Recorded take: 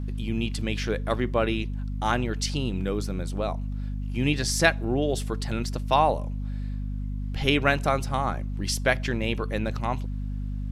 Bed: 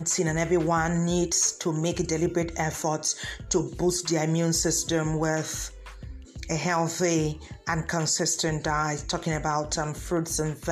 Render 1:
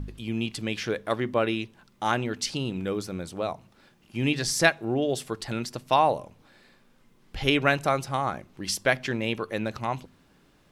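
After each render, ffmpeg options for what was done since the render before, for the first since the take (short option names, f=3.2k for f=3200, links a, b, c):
-af "bandreject=f=50:t=h:w=4,bandreject=f=100:t=h:w=4,bandreject=f=150:t=h:w=4,bandreject=f=200:t=h:w=4,bandreject=f=250:t=h:w=4"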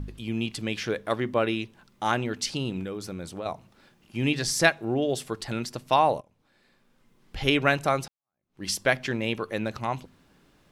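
-filter_complex "[0:a]asettb=1/sr,asplit=3[a][b][c];[a]atrim=end=2.834[d];[b]atrim=start=2.83:end=3.46,asetpts=PTS-STARTPTS,afade=t=in:d=0.004:c=qsin,afade=t=out:st=0.626:d=0.004:c=qsin,acompressor=threshold=-30dB:ratio=5:attack=3.2:release=140:knee=1:detection=peak[e];[c]atrim=start=3.456[f];[d][e]acrossfade=d=0.004:c1=hsin:c2=qsin[g];[g][f]acrossfade=d=0.004:c1=qsin:c2=hsin,asplit=3[h][i][j];[h]atrim=end=6.21,asetpts=PTS-STARTPTS,afade=t=out:st=6.206:d=0.004:c=hsin:silence=0.125893[k];[i]atrim=start=6.21:end=8.08,asetpts=PTS-STARTPTS,afade=t=in:d=1.22:silence=0.125893,afade=t=out:st=1.866:d=0.004:c=hsin[l];[j]atrim=start=8.08,asetpts=PTS-STARTPTS,afade=t=in:d=0.55:c=exp[m];[k][l][m]concat=n=3:v=0:a=1"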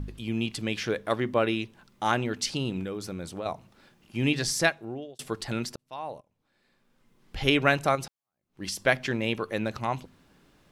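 -filter_complex "[0:a]asettb=1/sr,asplit=3[a][b][c];[a]atrim=end=7.954[d];[b]atrim=start=7.95:end=8.87,asetpts=PTS-STARTPTS,afade=t=in:d=0.004:c=qsin,afade=t=out:st=0.916:d=0.004:c=qsin,acompressor=threshold=-29dB:ratio=6:attack=3.2:release=140:knee=1:detection=peak[e];[c]atrim=start=8.866[f];[d][e]acrossfade=d=0.004:c1=hsin:c2=qsin[g];[g][f]acrossfade=d=0.004:c1=qsin:c2=hsin,asplit=3[h][i][j];[h]atrim=end=5.19,asetpts=PTS-STARTPTS,afade=t=out:st=4.41:d=0.78[k];[i]atrim=start=5.19:end=5.76,asetpts=PTS-STARTPTS,afade=t=in:d=0.004:c=hsin,afade=t=out:st=0.566:d=0.004:c=hsin[l];[j]atrim=start=5.76,asetpts=PTS-STARTPTS,afade=t=in:d=1.62[m];[k][l][m]concat=n=3:v=0:a=1"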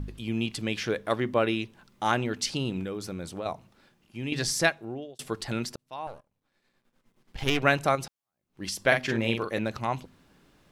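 -filter_complex "[0:a]asettb=1/sr,asplit=3[a][b][c];[a]atrim=end=6.074[d];[b]atrim=start=6.07:end=7.63,asetpts=PTS-STARTPTS,afade=t=in:d=0.004:c=qsin,afade=t=out:st=1.556:d=0.004:c=qsin,aeval=exprs='if(lt(val(0),0),0.251*val(0),val(0))':c=same[e];[c]atrim=start=7.626[f];[d][e]acrossfade=d=0.004:c1=hsin:c2=qsin[g];[g][f]acrossfade=d=0.004:c1=qsin:c2=hsin,asettb=1/sr,asplit=3[h][i][j];[h]atrim=end=8.874[k];[i]atrim=start=8.87:end=9.59,asetpts=PTS-STARTPTS,afade=t=in:d=0.004:c=qsin,afade=t=out:st=0.716:d=0.004:c=qsin,asplit=2[l][m];[m]adelay=44,volume=-5dB[n];[l][n]amix=inputs=2:normalize=0,atrim=end_sample=31752[o];[j]atrim=start=9.586[p];[k][o]acrossfade=d=0.004:c1=hsin:c2=qsin[q];[q][p]acrossfade=d=0.004:c1=qsin:c2=hsin,asplit=2[r][s];[r]atrim=end=4.32,asetpts=PTS-STARTPTS,afade=t=out:st=3.42:d=0.9:silence=0.334965[t];[s]atrim=start=4.32,asetpts=PTS-STARTPTS,afade=t=in:d=0.004:c=hsin:silence=0.334965[u];[t][u]concat=n=2:v=0:a=1"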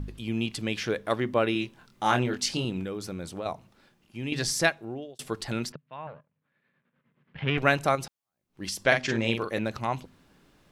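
-filter_complex "[0:a]asettb=1/sr,asplit=3[a][b][c];[a]atrim=end=1.534[d];[b]atrim=start=1.53:end=2.65,asetpts=PTS-STARTPTS,afade=t=in:d=0.004:c=qsin,afade=t=out:st=1.116:d=0.004:c=qsin,asplit=2[e][f];[f]adelay=24,volume=-4.5dB[g];[e][g]amix=inputs=2:normalize=0,atrim=end_sample=49392[h];[c]atrim=start=2.646[i];[d][h]acrossfade=d=0.004:c1=hsin:c2=qsin[j];[j][i]acrossfade=d=0.004:c1=qsin:c2=hsin,asettb=1/sr,asplit=3[k][l][m];[k]atrim=end=5.724[n];[l]atrim=start=5.72:end=7.58,asetpts=PTS-STARTPTS,afade=t=in:d=0.004:c=qsin,afade=t=out:st=1.856:d=0.004:c=qsin,highpass=120,equalizer=f=150:t=q:w=4:g=10,equalizer=f=340:t=q:w=4:g=-7,equalizer=f=780:t=q:w=4:g=-7,equalizer=f=1.7k:t=q:w=4:g=4,lowpass=f=2.9k:w=0.5412,lowpass=f=2.9k:w=1.3066[o];[m]atrim=start=7.576[p];[n][o]acrossfade=d=0.004:c1=hsin:c2=qsin[q];[q][p]acrossfade=d=0.004:c1=qsin:c2=hsin,asettb=1/sr,asplit=3[r][s][t];[r]atrim=end=8.844[u];[s]atrim=start=8.84:end=9.32,asetpts=PTS-STARTPTS,afade=t=in:d=0.004:c=qsin,afade=t=out:st=0.476:d=0.004:c=qsin,lowpass=f=6.9k:t=q:w=1.7[v];[t]atrim=start=9.316[w];[u][v]acrossfade=d=0.004:c1=hsin:c2=qsin[x];[x][w]acrossfade=d=0.004:c1=qsin:c2=hsin"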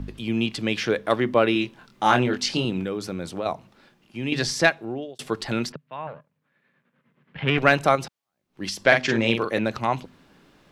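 -filter_complex "[0:a]acrossover=split=140|5600[a][b][c];[b]acontrast=49[d];[c]alimiter=level_in=8.5dB:limit=-24dB:level=0:latency=1:release=138,volume=-8.5dB[e];[a][d][e]amix=inputs=3:normalize=0"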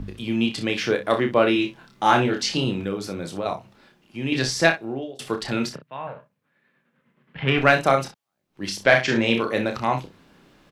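-af "aecho=1:1:30|61:0.473|0.237"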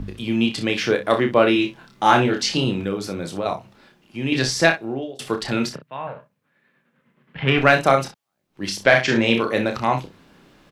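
-af "volume=2.5dB,alimiter=limit=-1dB:level=0:latency=1"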